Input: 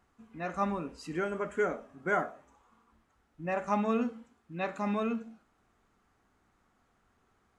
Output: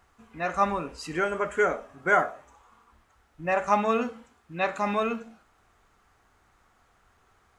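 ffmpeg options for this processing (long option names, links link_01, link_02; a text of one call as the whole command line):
ffmpeg -i in.wav -af "equalizer=frequency=230:width_type=o:width=1.5:gain=-9.5,volume=9dB" out.wav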